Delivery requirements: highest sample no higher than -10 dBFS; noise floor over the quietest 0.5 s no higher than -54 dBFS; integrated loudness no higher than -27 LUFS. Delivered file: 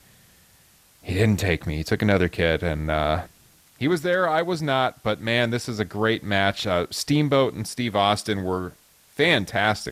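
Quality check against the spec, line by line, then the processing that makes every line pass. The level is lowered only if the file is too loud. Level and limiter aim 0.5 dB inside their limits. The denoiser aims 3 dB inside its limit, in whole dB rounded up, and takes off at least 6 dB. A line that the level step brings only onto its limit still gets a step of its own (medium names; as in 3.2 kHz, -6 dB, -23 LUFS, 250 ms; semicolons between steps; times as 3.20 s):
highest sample -7.0 dBFS: fail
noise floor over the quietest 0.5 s -56 dBFS: pass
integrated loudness -23.0 LUFS: fail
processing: trim -4.5 dB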